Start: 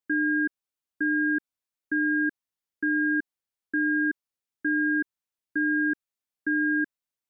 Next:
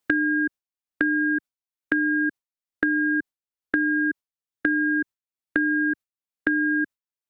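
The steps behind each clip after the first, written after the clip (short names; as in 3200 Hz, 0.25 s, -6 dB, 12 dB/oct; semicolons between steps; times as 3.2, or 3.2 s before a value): gate with hold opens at -24 dBFS; three-band squash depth 100%; gain +2 dB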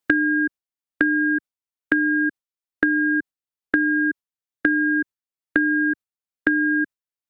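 upward expander 1.5:1, over -33 dBFS; gain +4.5 dB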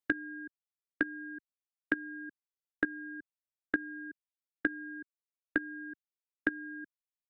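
level quantiser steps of 17 dB; gain -9 dB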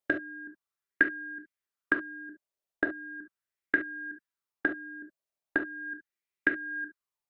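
on a send at -3.5 dB: reverb, pre-delay 3 ms; on the sum: LFO bell 0.39 Hz 590–2200 Hz +11 dB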